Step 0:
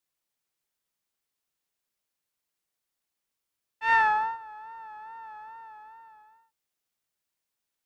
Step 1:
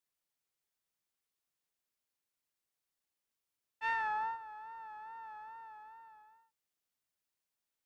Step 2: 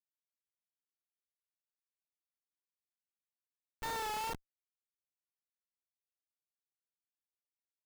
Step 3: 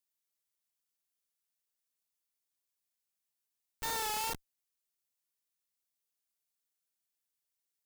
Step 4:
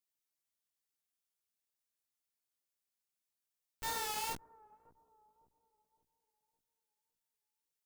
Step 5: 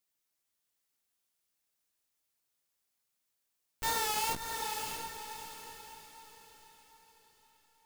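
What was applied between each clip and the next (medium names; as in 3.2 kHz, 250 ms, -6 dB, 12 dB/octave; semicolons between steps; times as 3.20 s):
compression 12:1, threshold -26 dBFS, peak gain reduction 9.5 dB; trim -5 dB
Schmitt trigger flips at -38 dBFS; trim +8.5 dB
treble shelf 3.7 kHz +10.5 dB
bucket-brigade echo 560 ms, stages 4096, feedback 40%, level -21.5 dB; chorus 2.2 Hz, delay 15.5 ms, depth 2.2 ms
echo that smears into a reverb 638 ms, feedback 43%, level -5 dB; trim +6 dB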